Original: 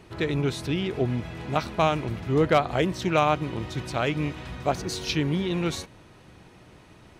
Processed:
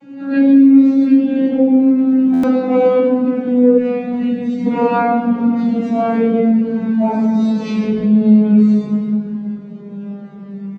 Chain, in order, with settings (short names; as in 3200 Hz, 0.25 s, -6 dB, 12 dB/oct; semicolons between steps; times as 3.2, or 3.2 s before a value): vocoder on a gliding note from C#4, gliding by -6 st; tilt -3 dB/oct; speakerphone echo 0.13 s, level -26 dB; shoebox room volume 530 m³, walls mixed, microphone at 7.6 m; compressor 2:1, threshold -11 dBFS, peak gain reduction 8.5 dB; high shelf 6100 Hz +5.5 dB; plain phase-vocoder stretch 1.5×; spectral gain 3.78–4.66, 250–1700 Hz -12 dB; stuck buffer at 2.33, samples 512, times 8; gain +1 dB